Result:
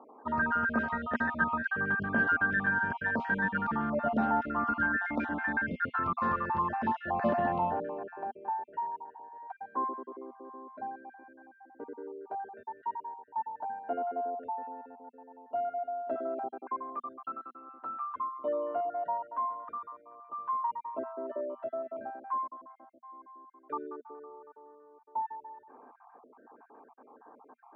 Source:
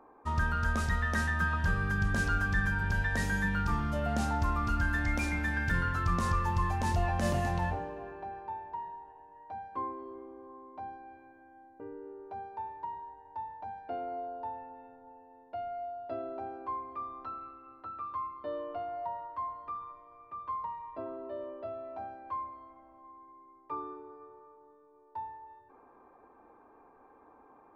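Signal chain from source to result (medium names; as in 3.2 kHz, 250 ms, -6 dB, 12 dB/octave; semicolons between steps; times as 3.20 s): random holes in the spectrogram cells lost 32%; cabinet simulation 200–2700 Hz, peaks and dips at 240 Hz +10 dB, 440 Hz +4 dB, 640 Hz +7 dB, 930 Hz +6 dB, 1.5 kHz +7 dB, 2.3 kHz -7 dB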